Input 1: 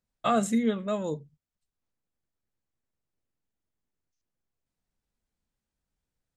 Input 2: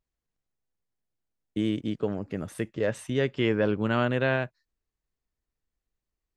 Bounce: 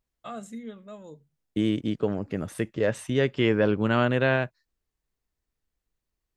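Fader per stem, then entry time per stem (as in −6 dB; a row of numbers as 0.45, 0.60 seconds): −13.5, +2.5 decibels; 0.00, 0.00 seconds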